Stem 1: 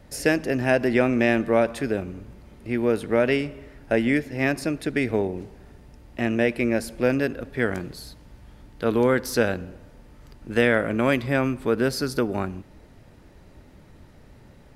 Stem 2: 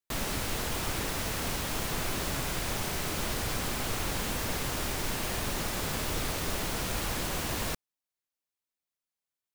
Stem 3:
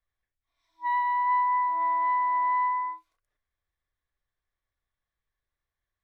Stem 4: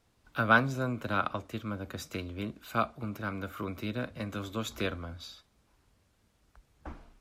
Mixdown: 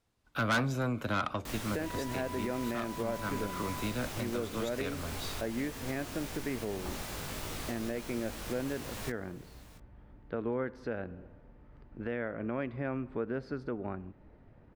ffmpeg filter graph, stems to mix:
-filter_complex "[0:a]lowpass=1800,adelay=1500,volume=0.422[s0];[1:a]flanger=delay=19:depth=2.7:speed=2.6,adelay=1350,volume=0.596,asplit=2[s1][s2];[s2]volume=0.126[s3];[2:a]adelay=1000,volume=0.178[s4];[3:a]asoftclip=type=tanh:threshold=0.0531,agate=range=0.316:threshold=0.00158:ratio=16:detection=peak,volume=1.33[s5];[s3]aecho=0:1:680:1[s6];[s0][s1][s4][s5][s6]amix=inputs=5:normalize=0,alimiter=limit=0.0631:level=0:latency=1:release=350"

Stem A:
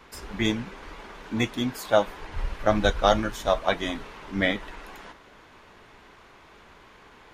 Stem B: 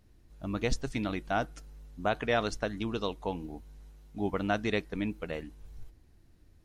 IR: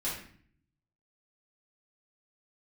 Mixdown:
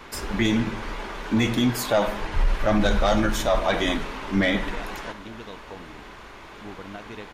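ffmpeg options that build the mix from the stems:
-filter_complex "[0:a]asoftclip=type=tanh:threshold=0.299,volume=1.06,asplit=2[s0][s1];[s1]volume=0.188[s2];[1:a]acompressor=threshold=0.0316:ratio=6,adelay=2450,volume=0.251[s3];[2:a]atrim=start_sample=2205[s4];[s2][s4]afir=irnorm=-1:irlink=0[s5];[s0][s3][s5]amix=inputs=3:normalize=0,acontrast=75,alimiter=limit=0.224:level=0:latency=1:release=16"

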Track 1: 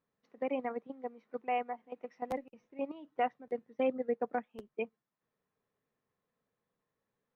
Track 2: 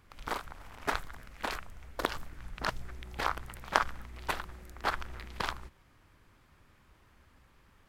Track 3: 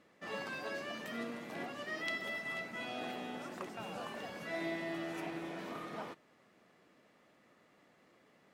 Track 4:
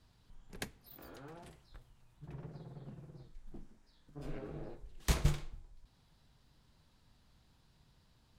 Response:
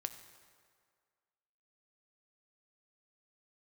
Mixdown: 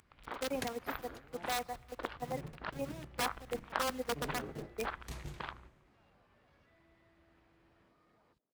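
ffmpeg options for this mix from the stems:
-filter_complex "[0:a]acompressor=mode=upward:threshold=0.00631:ratio=2.5,acrusher=bits=7:mix=0:aa=0.000001,aeval=exprs='(mod(17.8*val(0)+1,2)-1)/17.8':c=same,volume=0.631,asplit=3[s0][s1][s2];[s1]volume=0.224[s3];[1:a]lowpass=f=3600:w=0.5412,lowpass=f=3600:w=1.3066,asoftclip=type=hard:threshold=0.447,volume=0.376[s4];[2:a]acompressor=threshold=0.00631:ratio=6,alimiter=level_in=7.94:limit=0.0631:level=0:latency=1:release=58,volume=0.126,afwtdn=0.001,adelay=2200,volume=0.1[s5];[3:a]asoftclip=type=hard:threshold=0.0473,volume=0.944,asplit=2[s6][s7];[s7]volume=0.335[s8];[s2]apad=whole_len=369608[s9];[s6][s9]sidechaingate=range=0.0224:threshold=0.00224:ratio=16:detection=peak[s10];[4:a]atrim=start_sample=2205[s11];[s3][s8]amix=inputs=2:normalize=0[s12];[s12][s11]afir=irnorm=-1:irlink=0[s13];[s0][s4][s5][s10][s13]amix=inputs=5:normalize=0,highpass=46"

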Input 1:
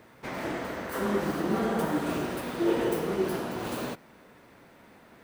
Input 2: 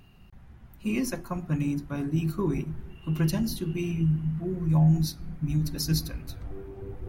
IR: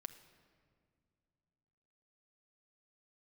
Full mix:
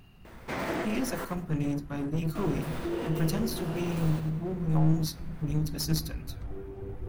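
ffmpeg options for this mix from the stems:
-filter_complex "[0:a]acompressor=threshold=0.0282:ratio=6,adelay=250,volume=1.19,asplit=3[s0][s1][s2];[s0]atrim=end=1.25,asetpts=PTS-STARTPTS,afade=t=out:st=1.246:d=0.004:c=hsin[s3];[s1]atrim=start=1.25:end=2.35,asetpts=PTS-STARTPTS,volume=0[s4];[s2]atrim=start=2.35,asetpts=PTS-STARTPTS,afade=t=in:d=0.004:c=hsin[s5];[s3][s4][s5]concat=n=3:v=0:a=1,asplit=3[s6][s7][s8];[s7]volume=0.631[s9];[s8]volume=0.224[s10];[1:a]aeval=exprs='clip(val(0),-1,0.0251)':c=same,volume=1,asplit=2[s11][s12];[s12]apad=whole_len=242104[s13];[s6][s13]sidechaincompress=threshold=0.00562:ratio=8:attack=5.1:release=117[s14];[2:a]atrim=start_sample=2205[s15];[s9][s15]afir=irnorm=-1:irlink=0[s16];[s10]aecho=0:1:99|198|297|396|495:1|0.35|0.122|0.0429|0.015[s17];[s14][s11][s16][s17]amix=inputs=4:normalize=0"

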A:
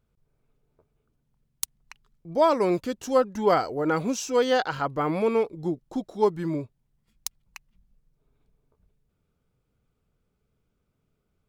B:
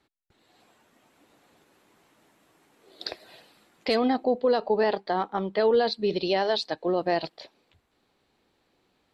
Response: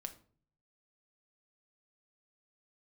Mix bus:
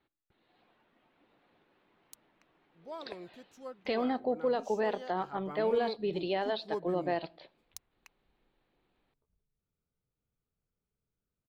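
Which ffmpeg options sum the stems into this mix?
-filter_complex "[0:a]adelay=500,volume=0.188,afade=t=in:st=5.13:d=0.7:silence=0.354813[s0];[1:a]lowpass=f=3700:w=0.5412,lowpass=f=3700:w=1.3066,volume=0.316,asplit=2[s1][s2];[s2]volume=0.631[s3];[2:a]atrim=start_sample=2205[s4];[s3][s4]afir=irnorm=-1:irlink=0[s5];[s0][s1][s5]amix=inputs=3:normalize=0"

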